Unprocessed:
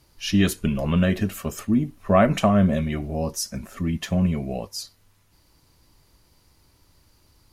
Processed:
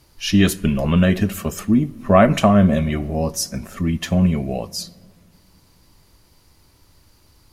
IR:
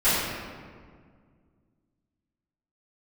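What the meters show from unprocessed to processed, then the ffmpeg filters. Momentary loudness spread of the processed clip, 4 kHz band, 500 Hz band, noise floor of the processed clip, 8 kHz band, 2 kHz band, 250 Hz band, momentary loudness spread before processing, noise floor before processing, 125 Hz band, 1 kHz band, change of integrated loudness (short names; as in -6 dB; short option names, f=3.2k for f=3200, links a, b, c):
12 LU, +4.5 dB, +4.5 dB, -55 dBFS, +4.5 dB, +4.5 dB, +4.5 dB, 12 LU, -61 dBFS, +4.5 dB, +4.5 dB, +4.5 dB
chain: -filter_complex "[0:a]asplit=2[a][b];[1:a]atrim=start_sample=2205[c];[b][c]afir=irnorm=-1:irlink=0,volume=-37.5dB[d];[a][d]amix=inputs=2:normalize=0,volume=4.5dB"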